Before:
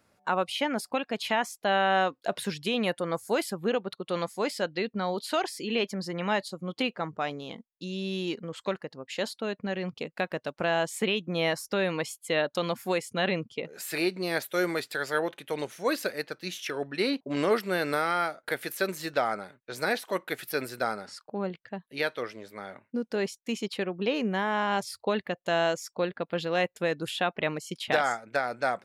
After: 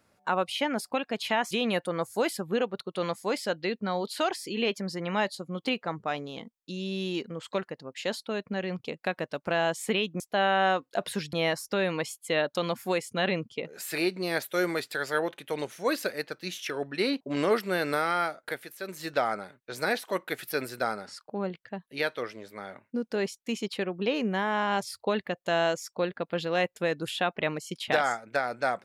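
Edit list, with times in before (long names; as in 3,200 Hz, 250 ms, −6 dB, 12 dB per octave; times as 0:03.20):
0:01.51–0:02.64: move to 0:11.33
0:18.38–0:19.12: duck −10 dB, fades 0.30 s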